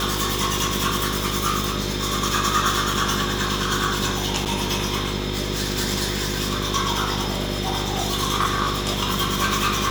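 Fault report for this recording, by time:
mains buzz 50 Hz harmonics 10 −28 dBFS
0:04.45–0:04.46: drop-out 8 ms

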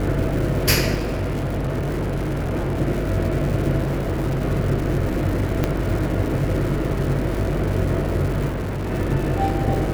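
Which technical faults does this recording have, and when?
mains buzz 50 Hz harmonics 14 −26 dBFS
surface crackle 360 per second −28 dBFS
0:00.94–0:02.81: clipping −20 dBFS
0:03.82–0:04.42: clipping −18.5 dBFS
0:05.64: click −7 dBFS
0:08.48–0:08.92: clipping −22.5 dBFS

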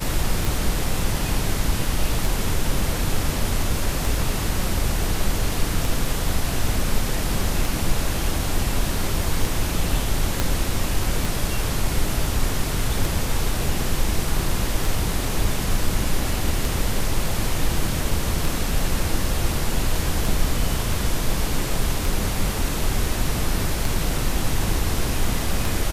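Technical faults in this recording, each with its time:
scratch tick 33 1/3 rpm
0:10.40: click −5 dBFS

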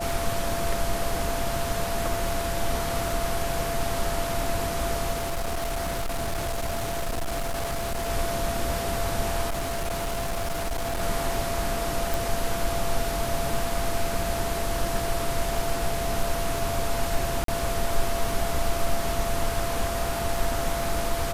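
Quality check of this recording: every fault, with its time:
surface crackle 53 per second −32 dBFS
whistle 680 Hz −30 dBFS
0:05.11–0:08.09: clipping −24.5 dBFS
0:09.49–0:11.02: clipping −24.5 dBFS
0:12.14: click
0:17.44–0:17.48: drop-out 43 ms

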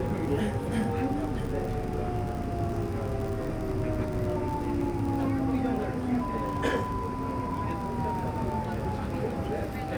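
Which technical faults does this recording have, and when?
surface crackle 58 per second −34 dBFS

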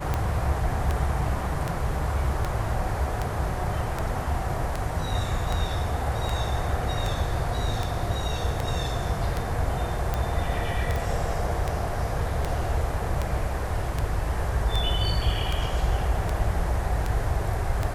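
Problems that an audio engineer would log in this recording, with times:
scratch tick 78 rpm −13 dBFS
0:10.96: click

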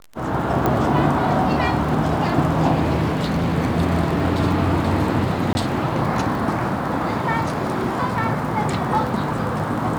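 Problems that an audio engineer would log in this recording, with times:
surface crackle 18 per second −26 dBFS
0:00.66: click −7 dBFS
0:03.09–0:03.55: clipping −16 dBFS
0:05.53–0:05.55: drop-out 20 ms

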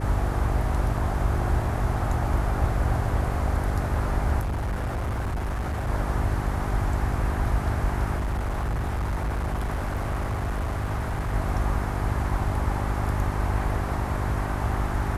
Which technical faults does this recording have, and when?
mains hum 50 Hz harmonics 8 −29 dBFS
0:04.40–0:05.90: clipping −24.5 dBFS
0:08.17–0:11.34: clipping −23.5 dBFS

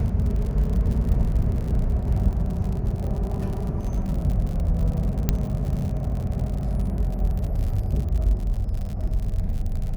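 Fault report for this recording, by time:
surface crackle 66 per second −30 dBFS
0:05.29: click −7 dBFS

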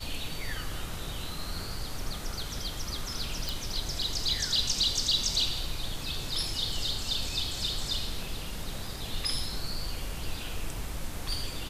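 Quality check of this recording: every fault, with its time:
0:03.49: click

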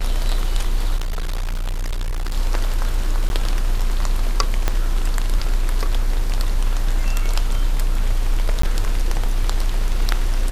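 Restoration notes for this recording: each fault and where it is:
0:00.96–0:02.34: clipping −19.5 dBFS
0:03.29–0:03.30: drop-out
0:04.68: click −5 dBFS
0:08.62–0:08.63: drop-out 14 ms

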